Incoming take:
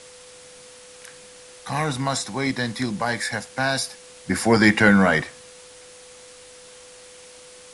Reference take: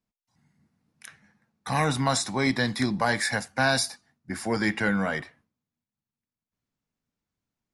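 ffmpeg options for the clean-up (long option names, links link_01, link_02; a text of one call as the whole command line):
ffmpeg -i in.wav -af "bandreject=frequency=500:width=30,afwtdn=0.0063,asetnsamples=nb_out_samples=441:pad=0,asendcmd='4.26 volume volume -10dB',volume=0dB" out.wav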